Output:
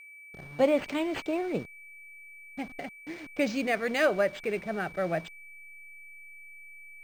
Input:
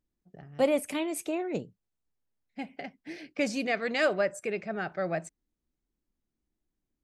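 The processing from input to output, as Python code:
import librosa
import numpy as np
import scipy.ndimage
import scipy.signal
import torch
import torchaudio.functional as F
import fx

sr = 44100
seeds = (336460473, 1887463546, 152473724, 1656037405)

y = fx.delta_hold(x, sr, step_db=-45.0)
y = y + 10.0 ** (-47.0 / 20.0) * np.sin(2.0 * np.pi * 2300.0 * np.arange(len(y)) / sr)
y = np.interp(np.arange(len(y)), np.arange(len(y))[::4], y[::4])
y = F.gain(torch.from_numpy(y), 1.5).numpy()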